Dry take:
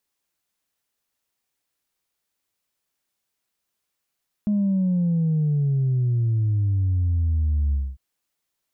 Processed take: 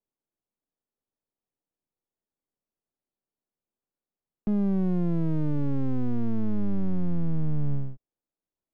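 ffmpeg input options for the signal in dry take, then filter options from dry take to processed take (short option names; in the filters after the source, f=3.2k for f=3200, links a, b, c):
-f lavfi -i "aevalsrc='0.119*clip((3.5-t)/0.24,0,1)*tanh(1*sin(2*PI*210*3.5/log(65/210)*(exp(log(65/210)*t/3.5)-1)))/tanh(1)':d=3.5:s=44100"
-filter_complex "[0:a]acrossover=split=170[a][b];[a]aeval=exprs='abs(val(0))':c=same[c];[b]adynamicsmooth=sensitivity=7.5:basefreq=590[d];[c][d]amix=inputs=2:normalize=0"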